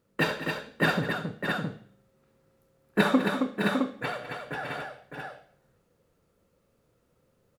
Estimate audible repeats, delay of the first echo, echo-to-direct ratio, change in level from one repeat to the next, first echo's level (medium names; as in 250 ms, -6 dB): 5, 67 ms, -0.5 dB, no regular repeats, -16.0 dB